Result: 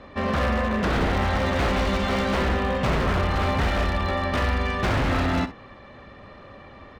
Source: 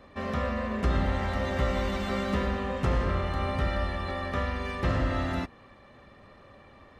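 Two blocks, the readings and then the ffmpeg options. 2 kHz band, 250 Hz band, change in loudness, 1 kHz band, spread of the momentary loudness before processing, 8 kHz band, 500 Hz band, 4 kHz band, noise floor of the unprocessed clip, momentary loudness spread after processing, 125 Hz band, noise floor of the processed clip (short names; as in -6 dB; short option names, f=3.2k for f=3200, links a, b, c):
+8.0 dB, +6.0 dB, +6.0 dB, +7.0 dB, 4 LU, n/a, +5.5 dB, +8.5 dB, -54 dBFS, 2 LU, +4.5 dB, -46 dBFS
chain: -filter_complex "[0:a]lowpass=5.5k,aeval=exprs='0.0562*(abs(mod(val(0)/0.0562+3,4)-2)-1)':c=same,asplit=2[a][b];[b]aecho=0:1:47|62:0.15|0.178[c];[a][c]amix=inputs=2:normalize=0,volume=8dB"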